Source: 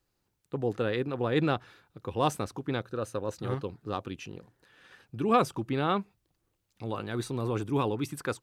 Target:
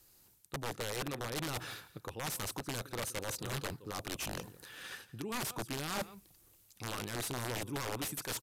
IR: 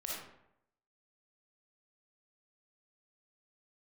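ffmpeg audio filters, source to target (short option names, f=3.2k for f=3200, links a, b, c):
-af "aemphasis=mode=production:type=75fm,areverse,acompressor=threshold=-41dB:ratio=16,areverse,aecho=1:1:169:0.112,aeval=exprs='(mod(84.1*val(0)+1,2)-1)/84.1':c=same,aresample=32000,aresample=44100,volume=7.5dB"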